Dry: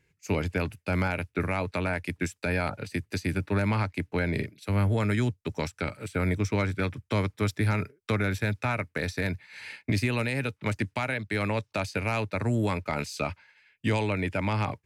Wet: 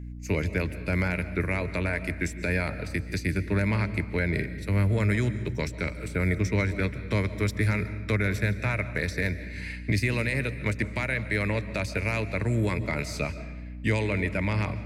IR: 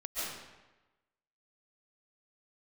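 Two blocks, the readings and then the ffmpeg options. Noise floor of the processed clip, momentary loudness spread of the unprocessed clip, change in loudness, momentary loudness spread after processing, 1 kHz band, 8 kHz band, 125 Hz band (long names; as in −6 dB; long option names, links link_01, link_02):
−38 dBFS, 6 LU, +1.5 dB, 6 LU, −4.5 dB, +1.0 dB, +2.0 dB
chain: -filter_complex "[0:a]equalizer=frequency=250:width_type=o:width=0.33:gain=-4,equalizer=frequency=800:width_type=o:width=0.33:gain=-10,equalizer=frequency=1250:width_type=o:width=0.33:gain=-6,equalizer=frequency=2000:width_type=o:width=0.33:gain=6,equalizer=frequency=3150:width_type=o:width=0.33:gain=-5,aeval=exprs='val(0)+0.0126*(sin(2*PI*60*n/s)+sin(2*PI*2*60*n/s)/2+sin(2*PI*3*60*n/s)/3+sin(2*PI*4*60*n/s)/4+sin(2*PI*5*60*n/s)/5)':channel_layout=same,asplit=2[link_01][link_02];[1:a]atrim=start_sample=2205,lowshelf=frequency=230:gain=9[link_03];[link_02][link_03]afir=irnorm=-1:irlink=0,volume=-16dB[link_04];[link_01][link_04]amix=inputs=2:normalize=0"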